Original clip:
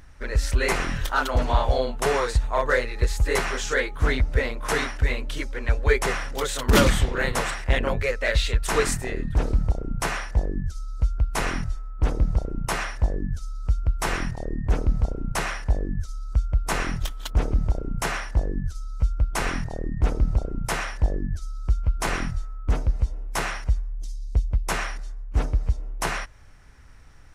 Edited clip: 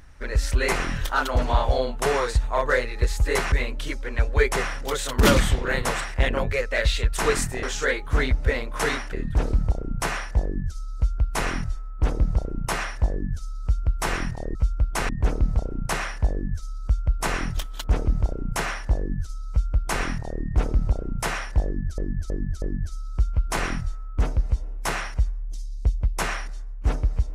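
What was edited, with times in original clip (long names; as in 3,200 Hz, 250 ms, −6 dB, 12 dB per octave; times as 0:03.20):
0:03.52–0:05.02: move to 0:09.13
0:18.95–0:19.49: duplicate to 0:14.55
0:21.12–0:21.44: repeat, 4 plays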